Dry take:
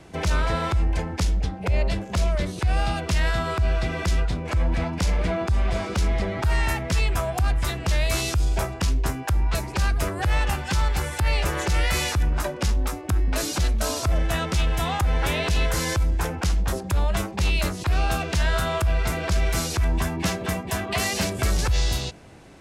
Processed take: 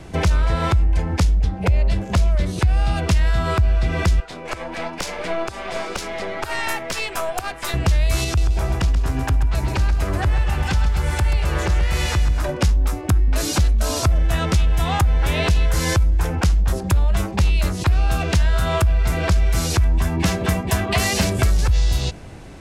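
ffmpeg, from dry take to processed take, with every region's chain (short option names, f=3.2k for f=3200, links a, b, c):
-filter_complex "[0:a]asettb=1/sr,asplit=3[a][b][c];[a]atrim=end=4.204[d];[b]atrim=start=4.2:end=7.74,asetpts=PTS-STARTPTS,afade=t=in:d=0.004:c=qsin,afade=t=out:st=3.536:d=0.004:c=qsin,highpass=410,aeval=exprs='(tanh(8.91*val(0)+0.55)-tanh(0.55))/8.91':c=same[e];[c]atrim=start=7.736[f];[d][e]acrossfade=d=0.004:c1=hsin:c2=qsin[g];[g][f]acrossfade=d=0.004:c1=qsin:c2=hsin,asettb=1/sr,asplit=3[h][i][j];[h]atrim=end=8.244[k];[i]atrim=start=8.24:end=12.49,asetpts=PTS-STARTPTS,afade=t=in:d=0.004:c=qsin,afade=t=out:st=4.246:d=0.004:c=qsin,highshelf=f=7k:g=-6,acompressor=threshold=-27dB:ratio=3:attack=3.2:release=140:knee=1:detection=peak,aecho=1:1:132|264|396|528|660:0.473|0.218|0.1|0.0461|0.0212,atrim=end_sample=187425[l];[j]atrim=start=12.486[m];[k][l]acrossfade=d=0.004:c1=hsin:c2=qsin[n];[n][m]acrossfade=d=0.004:c1=qsin:c2=hsin,lowshelf=f=93:g=11,acompressor=threshold=-20dB:ratio=6,volume=6dB"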